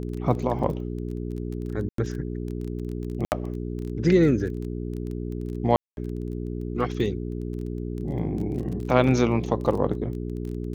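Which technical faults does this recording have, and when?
crackle 19/s -32 dBFS
hum 60 Hz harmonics 7 -31 dBFS
1.89–1.98 gap 93 ms
3.25–3.32 gap 69 ms
5.76–5.97 gap 0.211 s

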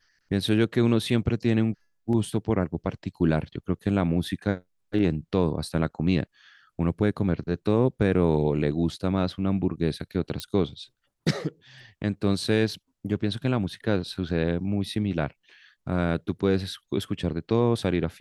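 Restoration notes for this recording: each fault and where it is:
10.4 pop -15 dBFS

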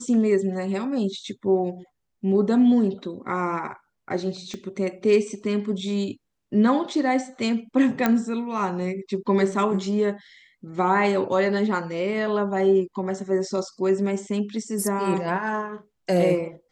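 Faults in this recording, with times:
4.54 pop -21 dBFS
8.06 pop -7 dBFS

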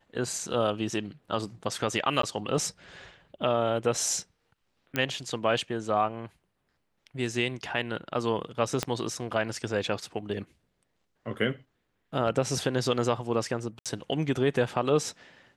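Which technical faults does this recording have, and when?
2.22–2.23 gap 13 ms
4.96 pop -13 dBFS
8.83 pop -11 dBFS
13.79–13.86 gap 67 ms

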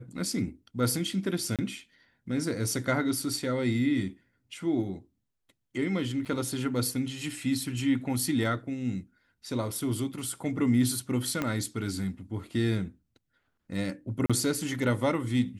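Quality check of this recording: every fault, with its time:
1.56–1.59 gap 27 ms
6.25–6.26 gap 7.3 ms
11.42 pop -15 dBFS
14.26–14.3 gap 36 ms

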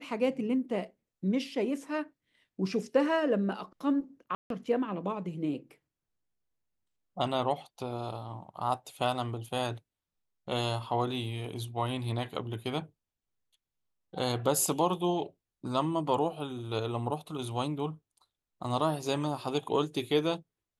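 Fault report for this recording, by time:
4.35–4.5 gap 0.152 s

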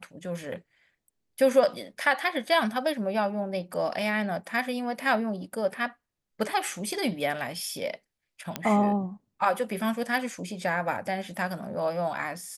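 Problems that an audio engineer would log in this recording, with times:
8.56 pop -12 dBFS

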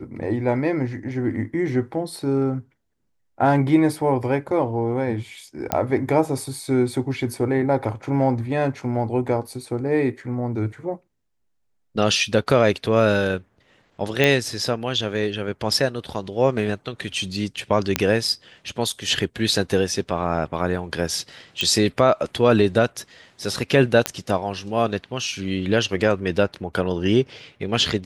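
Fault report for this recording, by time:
5.72 pop -6 dBFS
14.24 pop -5 dBFS
17.96 pop -2 dBFS
21.61 pop -8 dBFS
24.06 pop -4 dBFS

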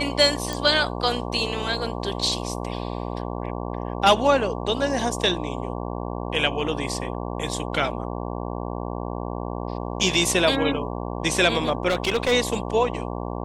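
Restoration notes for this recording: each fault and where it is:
buzz 60 Hz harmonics 19 -30 dBFS
0.53 pop
11.88–12.33 clipped -17.5 dBFS

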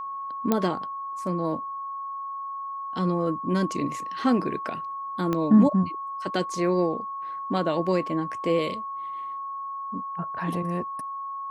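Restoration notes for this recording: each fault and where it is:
tone 1100 Hz -31 dBFS
0.52 pop -9 dBFS
5.33 pop -14 dBFS

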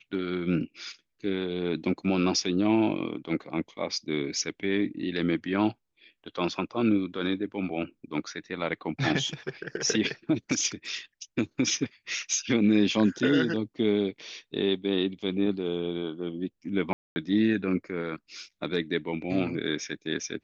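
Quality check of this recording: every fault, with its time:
16.93–17.16 gap 0.23 s

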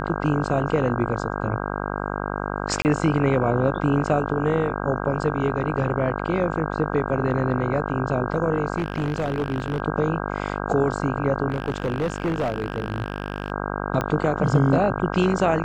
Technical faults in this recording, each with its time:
buzz 50 Hz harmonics 32 -28 dBFS
2.82–2.85 gap 29 ms
8.77–9.8 clipped -19.5 dBFS
11.49–13.52 clipped -19.5 dBFS
14.01 pop -11 dBFS

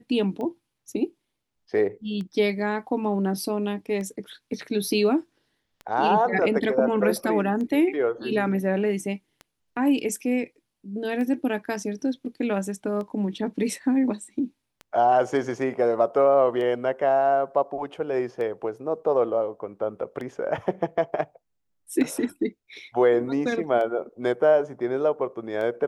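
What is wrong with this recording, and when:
tick 33 1/3 rpm -24 dBFS

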